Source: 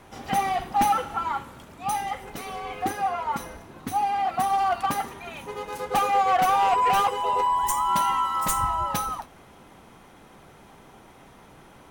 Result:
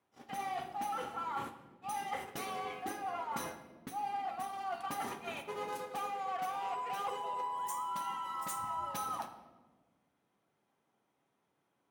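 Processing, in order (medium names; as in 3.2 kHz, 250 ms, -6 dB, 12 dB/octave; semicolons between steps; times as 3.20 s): high-pass 150 Hz 12 dB/octave; gate -38 dBFS, range -28 dB; reverse; compression 12:1, threshold -35 dBFS, peak gain reduction 17.5 dB; reverse; reverberation RT60 1.4 s, pre-delay 7 ms, DRR 7 dB; trim -1.5 dB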